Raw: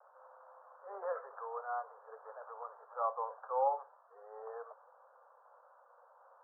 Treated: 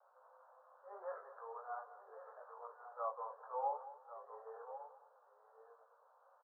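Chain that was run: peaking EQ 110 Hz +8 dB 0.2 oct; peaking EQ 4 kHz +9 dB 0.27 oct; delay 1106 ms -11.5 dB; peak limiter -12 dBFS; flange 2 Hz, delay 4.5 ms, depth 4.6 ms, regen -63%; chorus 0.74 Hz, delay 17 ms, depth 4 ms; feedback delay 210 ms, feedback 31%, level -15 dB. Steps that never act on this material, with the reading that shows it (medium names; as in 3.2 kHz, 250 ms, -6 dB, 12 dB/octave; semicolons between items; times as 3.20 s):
peaking EQ 110 Hz: input has nothing below 380 Hz; peaking EQ 4 kHz: input has nothing above 1.5 kHz; peak limiter -12 dBFS: peak at its input -21.0 dBFS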